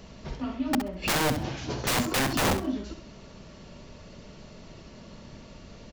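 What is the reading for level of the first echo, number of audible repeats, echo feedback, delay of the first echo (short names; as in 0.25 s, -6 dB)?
-9.5 dB, 2, 19%, 66 ms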